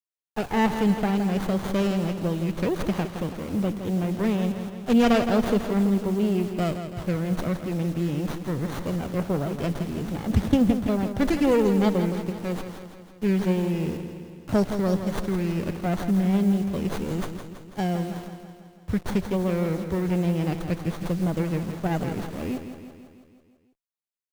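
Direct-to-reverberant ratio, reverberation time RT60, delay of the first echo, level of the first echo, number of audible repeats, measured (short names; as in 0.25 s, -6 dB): none, none, 0.165 s, -9.0 dB, 6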